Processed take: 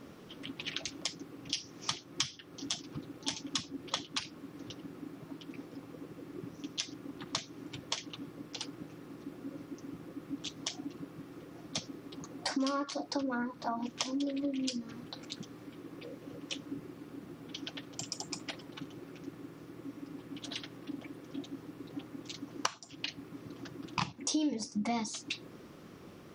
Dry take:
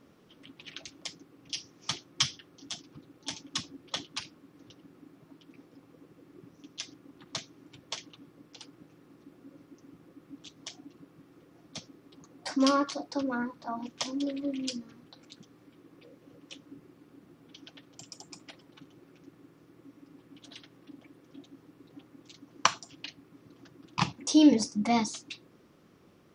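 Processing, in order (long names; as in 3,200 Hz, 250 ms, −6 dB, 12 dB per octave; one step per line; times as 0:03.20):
downward compressor 5 to 1, threshold −41 dBFS, peak gain reduction 23 dB
level +8.5 dB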